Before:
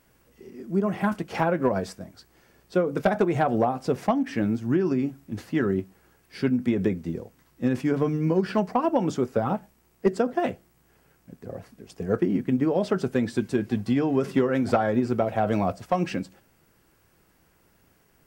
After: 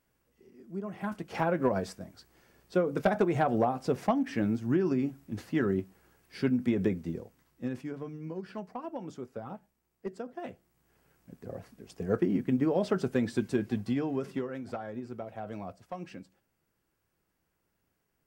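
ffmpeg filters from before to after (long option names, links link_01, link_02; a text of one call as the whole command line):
ffmpeg -i in.wav -af "volume=8dB,afade=type=in:start_time=0.94:duration=0.62:silence=0.354813,afade=type=out:start_time=6.99:duration=0.97:silence=0.251189,afade=type=in:start_time=10.38:duration=1.01:silence=0.251189,afade=type=out:start_time=13.53:duration=1.08:silence=0.251189" out.wav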